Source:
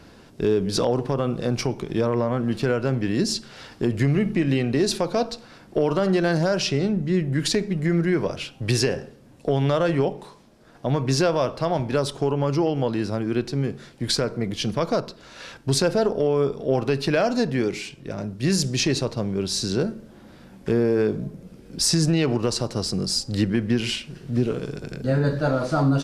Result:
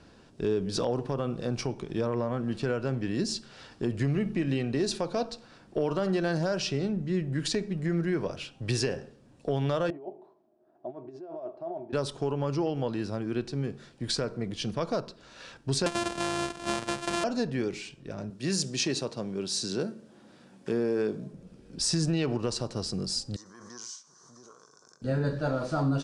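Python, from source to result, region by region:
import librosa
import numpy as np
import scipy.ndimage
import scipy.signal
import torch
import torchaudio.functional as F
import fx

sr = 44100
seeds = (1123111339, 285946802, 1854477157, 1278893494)

y = fx.chain(x, sr, fx.over_compress(threshold_db=-23.0, ratio=-0.5),
    fx.double_bandpass(hz=490.0, octaves=0.79), at=(9.9, 11.93))
y = fx.chain(y, sr, fx.sample_sort(block=128),
    fx.low_shelf(hz=440.0, db=-7.5),
    fx.band_squash(depth_pct=70), at=(15.86, 17.24))
y = fx.chain(y, sr, fx.highpass(hz=160.0, slope=12),
    fx.high_shelf(hz=5900.0, db=5.0), at=(18.3, 21.33))
y = fx.chain(y, sr, fx.double_bandpass(hz=2600.0, octaves=2.5),
    fx.high_shelf(hz=2700.0, db=8.5),
    fx.pre_swell(db_per_s=27.0), at=(23.36, 25.02))
y = scipy.signal.sosfilt(scipy.signal.butter(8, 10000.0, 'lowpass', fs=sr, output='sos'), y)
y = fx.notch(y, sr, hz=2100.0, q=15.0)
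y = y * 10.0 ** (-7.0 / 20.0)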